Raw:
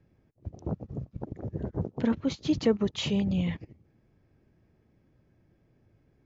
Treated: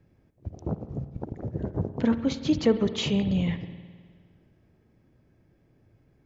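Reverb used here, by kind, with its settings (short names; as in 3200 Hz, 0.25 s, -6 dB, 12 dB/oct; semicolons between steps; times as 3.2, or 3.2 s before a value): spring tank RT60 1.7 s, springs 52 ms, chirp 20 ms, DRR 11 dB; gain +2.5 dB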